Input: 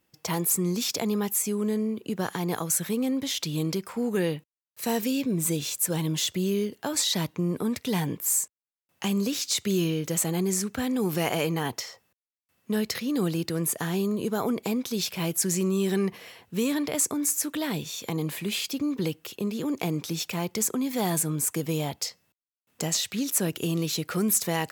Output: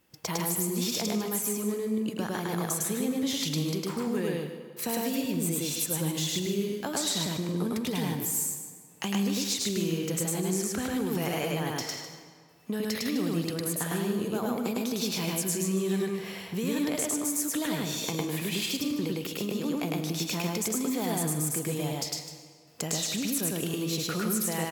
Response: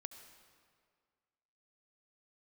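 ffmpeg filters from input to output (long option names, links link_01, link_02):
-filter_complex "[0:a]acompressor=threshold=-37dB:ratio=3,aecho=1:1:151:0.266,asplit=2[link_01][link_02];[1:a]atrim=start_sample=2205,adelay=105[link_03];[link_02][link_03]afir=irnorm=-1:irlink=0,volume=5dB[link_04];[link_01][link_04]amix=inputs=2:normalize=0,volume=4dB"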